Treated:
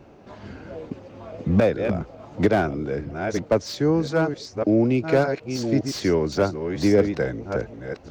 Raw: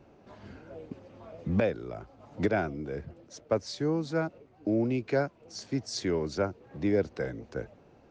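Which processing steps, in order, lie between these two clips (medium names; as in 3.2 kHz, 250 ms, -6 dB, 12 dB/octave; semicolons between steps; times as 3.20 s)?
chunks repeated in reverse 582 ms, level -7.5 dB; slew-rate limiter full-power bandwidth 54 Hz; trim +8.5 dB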